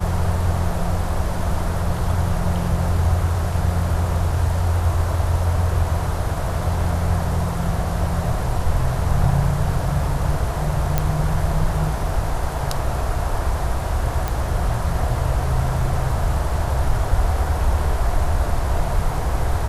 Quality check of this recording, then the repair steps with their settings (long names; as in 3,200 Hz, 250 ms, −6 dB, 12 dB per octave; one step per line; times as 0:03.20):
0:10.98: click −5 dBFS
0:14.28: click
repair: click removal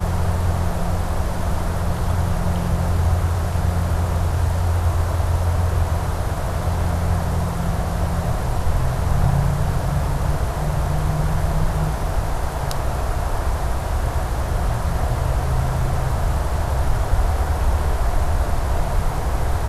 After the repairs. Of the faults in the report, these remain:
none of them is left